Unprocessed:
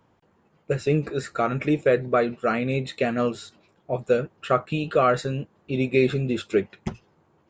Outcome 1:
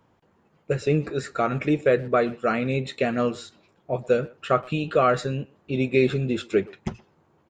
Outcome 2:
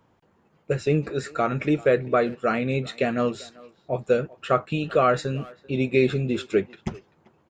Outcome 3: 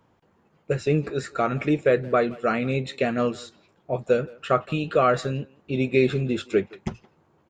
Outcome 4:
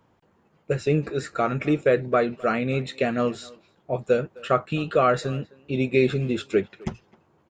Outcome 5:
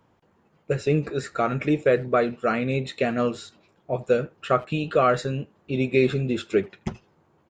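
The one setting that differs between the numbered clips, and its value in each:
speakerphone echo, time: 120 ms, 390 ms, 170 ms, 260 ms, 80 ms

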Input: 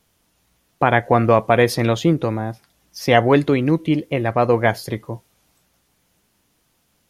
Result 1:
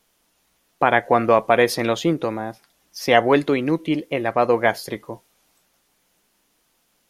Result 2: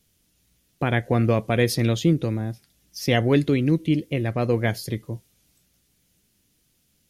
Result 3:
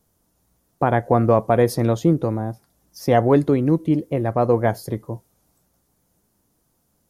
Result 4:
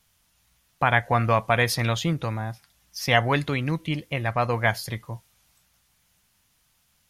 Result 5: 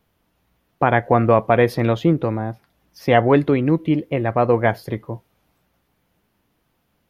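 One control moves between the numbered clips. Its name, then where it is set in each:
peaking EQ, frequency: 89 Hz, 940 Hz, 2.7 kHz, 360 Hz, 7.6 kHz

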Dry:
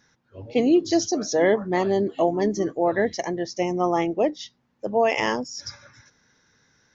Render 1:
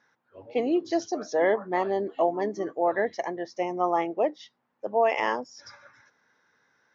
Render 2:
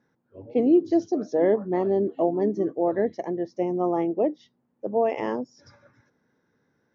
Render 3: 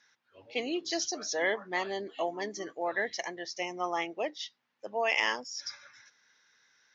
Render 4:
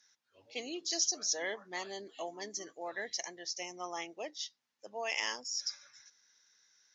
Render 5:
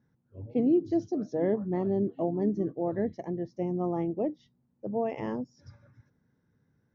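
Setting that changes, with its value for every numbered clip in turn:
band-pass filter, frequency: 990 Hz, 340 Hz, 2.8 kHz, 7.1 kHz, 130 Hz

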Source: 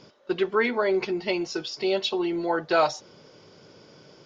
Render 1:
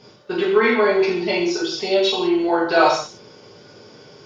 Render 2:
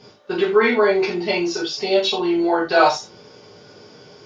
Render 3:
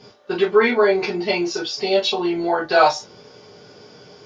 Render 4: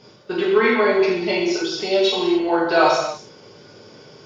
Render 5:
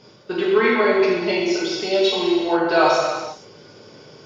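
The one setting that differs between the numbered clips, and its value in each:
gated-style reverb, gate: 220 ms, 120 ms, 80 ms, 330 ms, 510 ms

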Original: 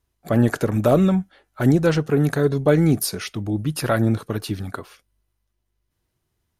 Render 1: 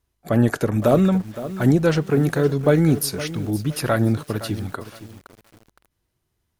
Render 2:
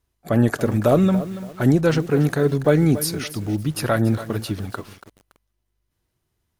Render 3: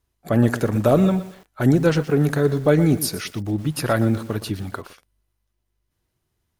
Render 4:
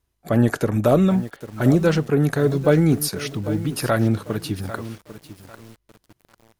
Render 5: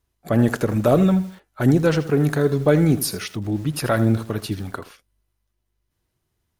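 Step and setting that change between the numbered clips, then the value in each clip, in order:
bit-crushed delay, time: 515 ms, 283 ms, 119 ms, 797 ms, 80 ms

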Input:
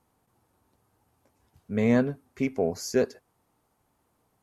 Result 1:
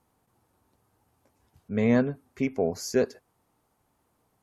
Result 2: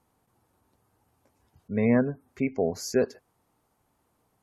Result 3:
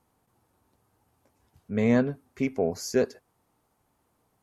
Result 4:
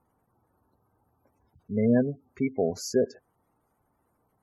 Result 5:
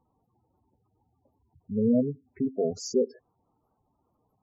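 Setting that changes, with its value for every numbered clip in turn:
spectral gate, under each frame's peak: -50 dB, -35 dB, -60 dB, -20 dB, -10 dB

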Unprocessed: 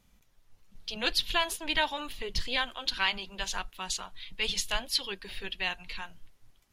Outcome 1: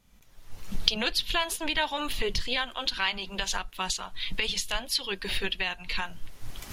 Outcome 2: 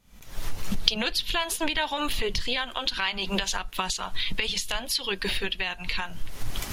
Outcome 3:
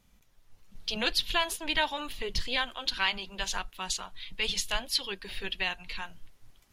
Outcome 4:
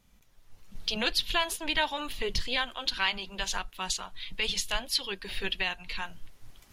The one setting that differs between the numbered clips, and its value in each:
recorder AGC, rising by: 35 dB/s, 87 dB/s, 5.1 dB/s, 13 dB/s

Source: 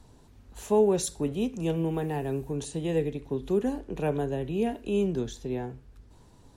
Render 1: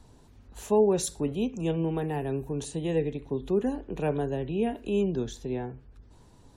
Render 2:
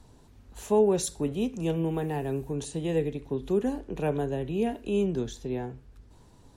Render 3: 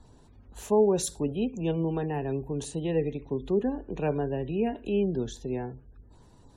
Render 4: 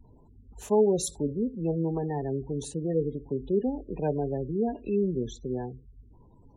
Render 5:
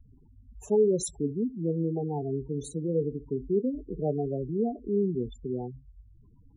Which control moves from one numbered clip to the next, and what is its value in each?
spectral gate, under each frame's peak: -45 dB, -60 dB, -35 dB, -20 dB, -10 dB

